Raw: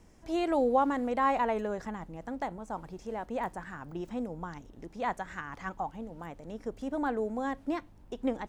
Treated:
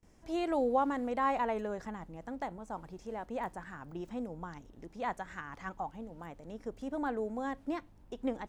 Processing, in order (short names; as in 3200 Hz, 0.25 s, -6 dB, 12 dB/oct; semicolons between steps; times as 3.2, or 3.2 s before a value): gate with hold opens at -50 dBFS; gain -3.5 dB